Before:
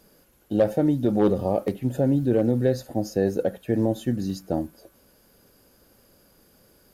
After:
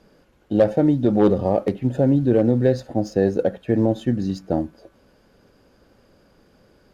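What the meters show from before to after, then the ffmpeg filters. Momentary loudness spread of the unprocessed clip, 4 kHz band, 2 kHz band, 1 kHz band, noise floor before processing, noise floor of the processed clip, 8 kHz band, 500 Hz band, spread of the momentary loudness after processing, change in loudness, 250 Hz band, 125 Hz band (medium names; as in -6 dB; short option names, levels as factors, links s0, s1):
8 LU, +1.5 dB, +3.5 dB, +4.0 dB, -59 dBFS, -58 dBFS, no reading, +4.0 dB, 8 LU, +4.0 dB, +4.0 dB, +4.0 dB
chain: -af "adynamicsmooth=sensitivity=6:basefreq=4400,volume=1.58"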